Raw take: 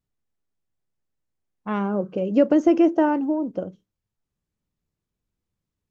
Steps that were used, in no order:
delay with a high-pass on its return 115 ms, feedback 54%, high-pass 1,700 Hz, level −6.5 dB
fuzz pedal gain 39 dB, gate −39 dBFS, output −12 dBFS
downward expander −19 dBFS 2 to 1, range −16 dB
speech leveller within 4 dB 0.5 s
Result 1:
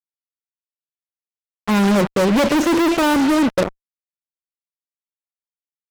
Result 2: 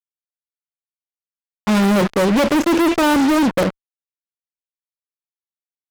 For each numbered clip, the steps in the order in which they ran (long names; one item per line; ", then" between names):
downward expander, then delay with a high-pass on its return, then fuzz pedal, then speech leveller
delay with a high-pass on its return, then speech leveller, then downward expander, then fuzz pedal